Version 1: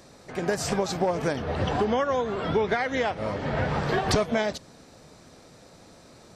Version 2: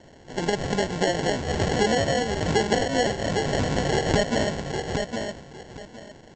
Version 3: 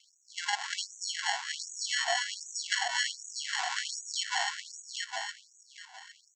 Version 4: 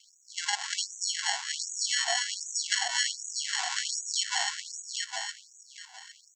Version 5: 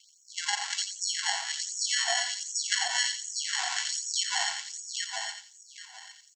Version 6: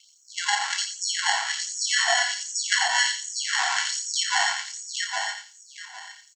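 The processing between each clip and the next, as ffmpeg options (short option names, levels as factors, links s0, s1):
-filter_complex "[0:a]asplit=2[s0][s1];[s1]adelay=810,lowpass=f=4800:p=1,volume=0.531,asplit=2[s2][s3];[s3]adelay=810,lowpass=f=4800:p=1,volume=0.21,asplit=2[s4][s5];[s5]adelay=810,lowpass=f=4800:p=1,volume=0.21[s6];[s0][s2][s4][s6]amix=inputs=4:normalize=0,aresample=16000,acrusher=samples=13:mix=1:aa=0.000001,aresample=44100,volume=1.19"
-af "afftfilt=real='re*gte(b*sr/1024,670*pow(5900/670,0.5+0.5*sin(2*PI*1.3*pts/sr)))':imag='im*gte(b*sr/1024,670*pow(5900/670,0.5+0.5*sin(2*PI*1.3*pts/sr)))':win_size=1024:overlap=0.75"
-af "highshelf=f=3900:g=10.5,volume=0.794"
-af "aecho=1:1:88|176|264:0.398|0.0677|0.0115"
-filter_complex "[0:a]equalizer=f=1200:t=o:w=1.6:g=8.5,asplit=2[s0][s1];[s1]adelay=29,volume=0.447[s2];[s0][s2]amix=inputs=2:normalize=0,volume=1.26"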